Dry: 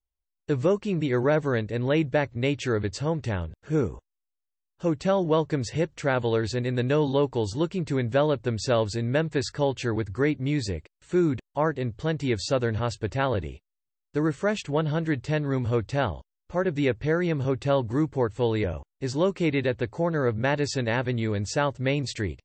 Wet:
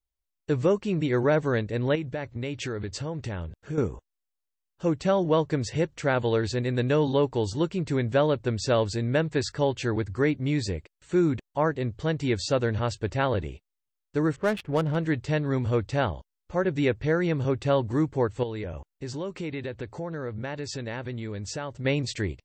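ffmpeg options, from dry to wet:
-filter_complex "[0:a]asettb=1/sr,asplit=3[s0][s1][s2];[s0]atrim=end=1.954[s3];[s1]atrim=start=1.95:end=3.78,asetpts=PTS-STARTPTS,afade=t=in:d=0.004:c=qsin,afade=t=out:st=1.826:d=0.004:c=qsin,acompressor=threshold=0.0398:ratio=5:attack=3.2:release=140:knee=1:detection=peak[s4];[s2]atrim=start=3.776[s5];[s3][s4]acrossfade=d=0.004:c1=hsin:c2=qsin[s6];[s6][s5]acrossfade=d=0.004:c1=qsin:c2=hsin,asettb=1/sr,asplit=3[s7][s8][s9];[s7]atrim=end=14.364[s10];[s8]atrim=start=14.36:end=14.96,asetpts=PTS-STARTPTS,afade=t=in:d=0.004:c=qsin,afade=t=out:st=0.596:d=0.004:c=qsin,adynamicsmooth=sensitivity=5:basefreq=710[s11];[s9]atrim=start=14.956[s12];[s10][s11]acrossfade=d=0.004:c1=hsin:c2=qsin[s13];[s13][s12]acrossfade=d=0.004:c1=qsin:c2=hsin,asettb=1/sr,asplit=3[s14][s15][s16];[s14]atrim=end=18.434[s17];[s15]atrim=start=18.43:end=21.85,asetpts=PTS-STARTPTS,afade=t=in:d=0.004:c=qsin,afade=t=out:st=3.416:d=0.004:c=qsin,acompressor=threshold=0.0251:ratio=3:attack=3.2:release=140:knee=1:detection=peak[s18];[s16]atrim=start=21.846[s19];[s17][s18]acrossfade=d=0.004:c1=hsin:c2=qsin[s20];[s20][s19]acrossfade=d=0.004:c1=qsin:c2=hsin"

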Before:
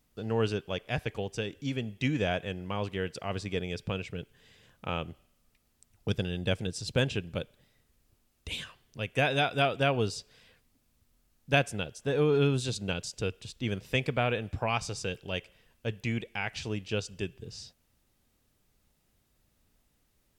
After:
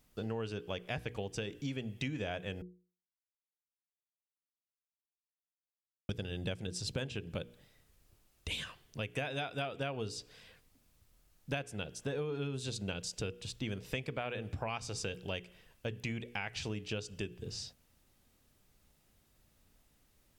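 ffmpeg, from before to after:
-filter_complex "[0:a]asplit=3[s0][s1][s2];[s0]atrim=end=2.62,asetpts=PTS-STARTPTS,afade=t=out:st=2.616:d=0.004:c=hsin[s3];[s1]atrim=start=2.62:end=6.09,asetpts=PTS-STARTPTS,volume=0[s4];[s2]atrim=start=6.09,asetpts=PTS-STARTPTS,afade=t=in:d=0.004:c=hsin[s5];[s3][s4][s5]concat=n=3:v=0:a=1,bandreject=f=60:t=h:w=6,bandreject=f=120:t=h:w=6,bandreject=f=180:t=h:w=6,bandreject=f=240:t=h:w=6,bandreject=f=300:t=h:w=6,bandreject=f=360:t=h:w=6,bandreject=f=420:t=h:w=6,bandreject=f=480:t=h:w=6,acompressor=threshold=0.0141:ratio=6,volume=1.26"

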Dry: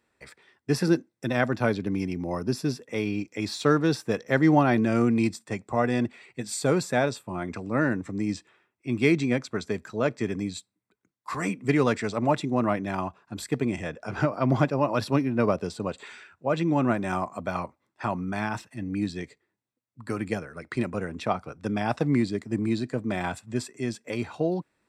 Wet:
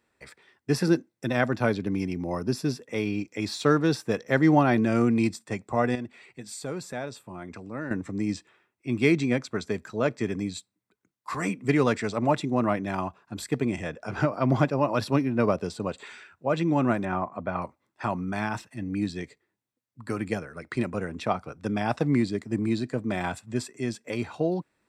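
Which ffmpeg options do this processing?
-filter_complex "[0:a]asettb=1/sr,asplit=3[s0][s1][s2];[s0]atrim=end=5.954[s3];[s1]atrim=start=5.95:end=7.91,asetpts=PTS-STARTPTS,afade=t=in:d=0.004:c=qsin,afade=t=out:st=1.956:d=0.004:c=qsin,acompressor=threshold=0.00398:ratio=1.5:attack=3.2:release=140:knee=1:detection=peak[s4];[s2]atrim=start=7.906[s5];[s3][s4]acrossfade=d=0.004:c1=hsin:c2=qsin[s6];[s6][s5]acrossfade=d=0.004:c1=qsin:c2=hsin,asettb=1/sr,asplit=3[s7][s8][s9];[s7]atrim=end=17.054[s10];[s8]atrim=start=17.05:end=17.62,asetpts=PTS-STARTPTS,afade=t=in:d=0.004:c=qsin,afade=t=out:st=0.566:d=0.004:c=qsin,lowpass=2100[s11];[s9]atrim=start=17.616[s12];[s10][s11]acrossfade=d=0.004:c1=hsin:c2=qsin[s13];[s13][s12]acrossfade=d=0.004:c1=qsin:c2=hsin"

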